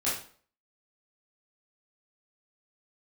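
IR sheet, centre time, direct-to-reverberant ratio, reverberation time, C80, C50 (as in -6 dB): 42 ms, -10.0 dB, 0.45 s, 9.0 dB, 3.5 dB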